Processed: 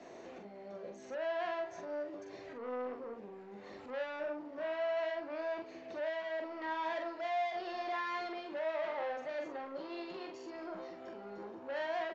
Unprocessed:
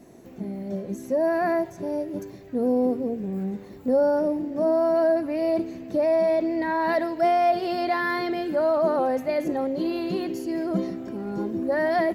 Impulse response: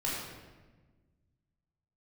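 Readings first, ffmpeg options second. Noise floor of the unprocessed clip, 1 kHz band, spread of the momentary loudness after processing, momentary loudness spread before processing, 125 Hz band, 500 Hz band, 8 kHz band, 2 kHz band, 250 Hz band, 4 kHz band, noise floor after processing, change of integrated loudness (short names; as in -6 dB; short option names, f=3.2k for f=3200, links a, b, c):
-44 dBFS, -13.0 dB, 12 LU, 11 LU, under -25 dB, -15.0 dB, n/a, -10.0 dB, -22.0 dB, -8.5 dB, -51 dBFS, -15.0 dB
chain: -filter_complex "[0:a]acrossover=split=120[a][b];[b]asoftclip=type=tanh:threshold=-25.5dB[c];[a][c]amix=inputs=2:normalize=0,acompressor=threshold=-39dB:ratio=6,alimiter=level_in=13.5dB:limit=-24dB:level=0:latency=1:release=178,volume=-13.5dB,acrossover=split=430 4800:gain=0.112 1 0.251[d][e][f];[d][e][f]amix=inputs=3:normalize=0,aresample=16000,aresample=44100,asplit=2[g][h];[h]adelay=44,volume=-4.5dB[i];[g][i]amix=inputs=2:normalize=0,volume=4dB"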